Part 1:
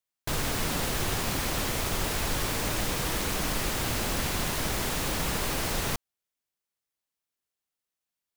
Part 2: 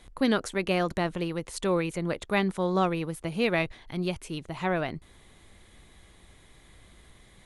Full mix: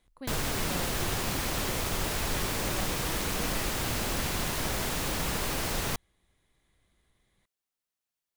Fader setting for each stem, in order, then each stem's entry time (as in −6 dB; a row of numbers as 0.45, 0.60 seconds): −1.5, −17.0 decibels; 0.00, 0.00 seconds